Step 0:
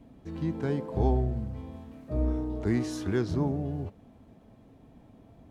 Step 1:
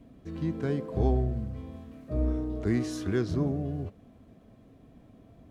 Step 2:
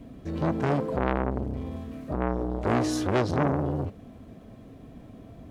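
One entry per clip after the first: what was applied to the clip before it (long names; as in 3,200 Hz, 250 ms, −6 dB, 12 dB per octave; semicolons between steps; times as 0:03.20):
notch filter 870 Hz, Q 5.3
saturating transformer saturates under 1,300 Hz; level +8.5 dB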